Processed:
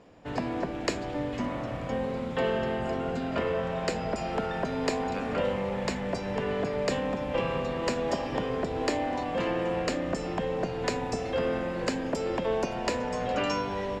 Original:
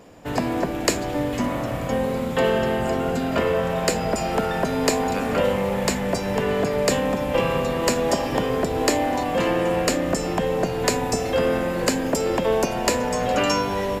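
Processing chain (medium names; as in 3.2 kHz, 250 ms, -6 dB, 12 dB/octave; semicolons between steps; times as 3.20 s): low-pass 5 kHz 12 dB/octave; trim -7.5 dB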